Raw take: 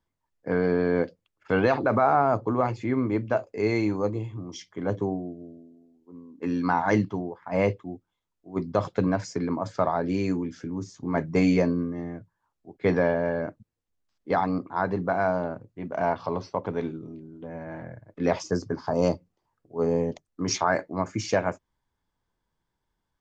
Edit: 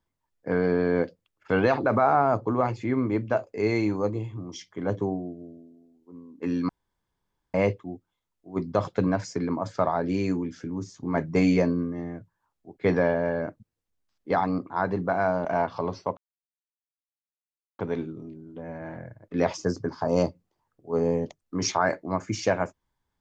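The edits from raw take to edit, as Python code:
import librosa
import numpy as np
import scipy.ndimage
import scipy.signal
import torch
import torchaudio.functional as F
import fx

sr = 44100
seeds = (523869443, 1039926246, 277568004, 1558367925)

y = fx.edit(x, sr, fx.room_tone_fill(start_s=6.69, length_s=0.85),
    fx.cut(start_s=15.45, length_s=0.48),
    fx.insert_silence(at_s=16.65, length_s=1.62), tone=tone)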